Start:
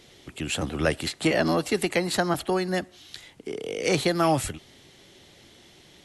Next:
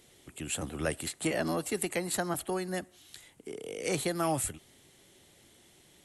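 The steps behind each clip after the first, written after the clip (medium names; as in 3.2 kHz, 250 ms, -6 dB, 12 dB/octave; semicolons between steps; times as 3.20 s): resonant high shelf 6.7 kHz +8 dB, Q 1.5; trim -8 dB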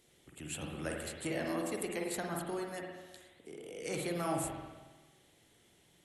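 spring tank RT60 1.3 s, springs 46/52 ms, chirp 70 ms, DRR 0 dB; trim -8 dB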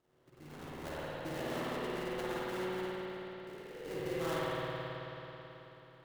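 cabinet simulation 110–3200 Hz, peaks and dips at 220 Hz -8 dB, 480 Hz -6 dB, 690 Hz -4 dB, 2.3 kHz -4 dB; sample-rate reducer 2.4 kHz, jitter 20%; spring tank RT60 3.9 s, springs 54 ms, chirp 30 ms, DRR -7.5 dB; trim -4.5 dB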